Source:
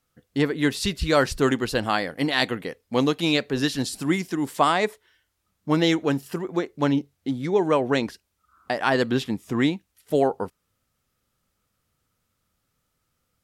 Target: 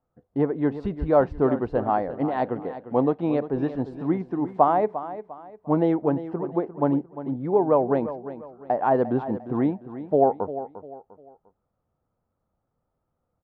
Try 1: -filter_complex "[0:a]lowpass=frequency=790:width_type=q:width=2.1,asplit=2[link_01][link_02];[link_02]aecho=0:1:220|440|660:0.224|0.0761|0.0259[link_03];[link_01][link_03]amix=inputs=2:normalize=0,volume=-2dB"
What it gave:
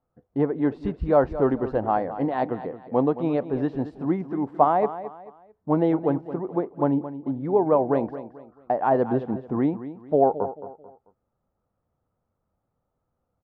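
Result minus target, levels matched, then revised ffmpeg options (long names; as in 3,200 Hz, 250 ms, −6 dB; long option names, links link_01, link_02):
echo 130 ms early
-filter_complex "[0:a]lowpass=frequency=790:width_type=q:width=2.1,asplit=2[link_01][link_02];[link_02]aecho=0:1:350|700|1050:0.224|0.0761|0.0259[link_03];[link_01][link_03]amix=inputs=2:normalize=0,volume=-2dB"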